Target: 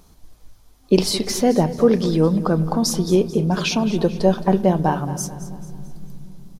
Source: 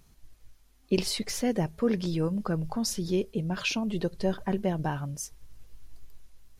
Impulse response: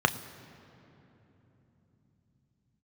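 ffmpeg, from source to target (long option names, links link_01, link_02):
-filter_complex "[0:a]aecho=1:1:219|438|657|876:0.178|0.08|0.036|0.0162,asplit=2[link_01][link_02];[1:a]atrim=start_sample=2205,highshelf=frequency=3900:gain=-11[link_03];[link_02][link_03]afir=irnorm=-1:irlink=0,volume=-16.5dB[link_04];[link_01][link_04]amix=inputs=2:normalize=0,volume=8.5dB"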